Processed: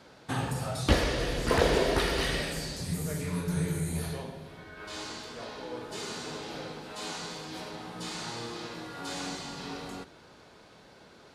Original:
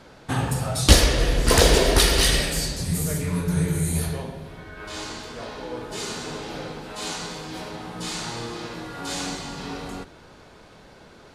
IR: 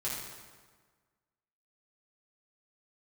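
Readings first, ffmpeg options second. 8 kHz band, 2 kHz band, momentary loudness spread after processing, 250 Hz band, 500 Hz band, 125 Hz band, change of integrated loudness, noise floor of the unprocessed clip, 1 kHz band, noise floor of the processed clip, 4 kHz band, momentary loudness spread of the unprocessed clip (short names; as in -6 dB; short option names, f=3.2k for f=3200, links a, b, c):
-13.5 dB, -6.5 dB, 14 LU, -6.5 dB, -5.5 dB, -9.0 dB, -9.5 dB, -49 dBFS, -5.5 dB, -55 dBFS, -10.5 dB, 18 LU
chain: -filter_complex "[0:a]acrossover=split=2600[a][b];[b]acompressor=threshold=-34dB:ratio=4:attack=1:release=60[c];[a][c]amix=inputs=2:normalize=0,highpass=f=110:p=1,equalizer=f=4.4k:w=1.5:g=2.5,volume=-5.5dB"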